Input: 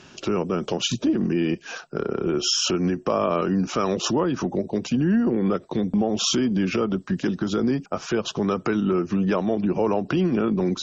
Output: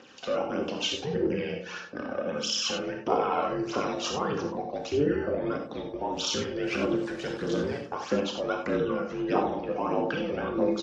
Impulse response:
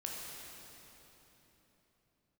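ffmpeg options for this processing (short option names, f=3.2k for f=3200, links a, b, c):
-filter_complex "[0:a]asettb=1/sr,asplit=3[a][b][c];[a]atrim=end=6.634[d];[b]atrim=start=6.63:end=7.81,asetpts=PTS-STARTPTS,afade=t=in:d=0.004:c=qsin,afade=t=out:st=1.176:d=0.004:c=qsin,aeval=exprs='val(0)+0.5*0.0188*sgn(val(0))':c=same[e];[c]atrim=start=7.806[f];[d][e]acrossfade=d=0.004:c1=hsin:c2=qsin[g];[g][f]acrossfade=d=0.004:c1=qsin:c2=hsin,bandreject=f=480:w=13,aeval=exprs='val(0)*sin(2*PI*150*n/s)':c=same,aphaser=in_gain=1:out_gain=1:delay=1.8:decay=0.61:speed=1.6:type=triangular,highpass=250,lowpass=5.5k,asplit=2[h][i];[i]adelay=102,lowpass=f=1.1k:p=1,volume=-11.5dB,asplit=2[j][k];[k]adelay=102,lowpass=f=1.1k:p=1,volume=0.53,asplit=2[l][m];[m]adelay=102,lowpass=f=1.1k:p=1,volume=0.53,asplit=2[n][o];[o]adelay=102,lowpass=f=1.1k:p=1,volume=0.53,asplit=2[p][q];[q]adelay=102,lowpass=f=1.1k:p=1,volume=0.53,asplit=2[r][s];[s]adelay=102,lowpass=f=1.1k:p=1,volume=0.53[t];[h][j][l][n][p][r][t]amix=inputs=7:normalize=0[u];[1:a]atrim=start_sample=2205,afade=t=out:st=0.15:d=0.01,atrim=end_sample=7056[v];[u][v]afir=irnorm=-1:irlink=0" -ar 32000 -c:a wmav2 -b:a 128k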